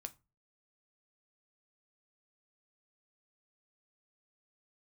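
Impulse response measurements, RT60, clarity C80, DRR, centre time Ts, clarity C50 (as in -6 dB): 0.30 s, 28.5 dB, 8.0 dB, 4 ms, 21.0 dB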